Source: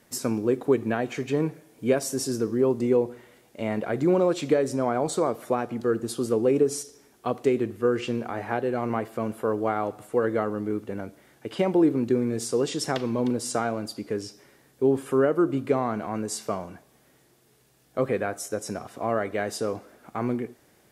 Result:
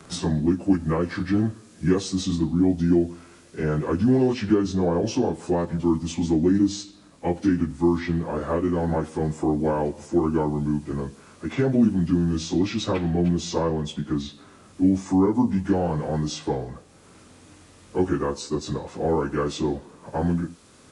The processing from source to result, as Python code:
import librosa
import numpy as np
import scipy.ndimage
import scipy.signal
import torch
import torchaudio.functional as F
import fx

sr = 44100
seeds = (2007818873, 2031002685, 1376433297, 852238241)

y = fx.pitch_bins(x, sr, semitones=-6.0)
y = fx.band_squash(y, sr, depth_pct=40)
y = F.gain(torch.from_numpy(y), 4.0).numpy()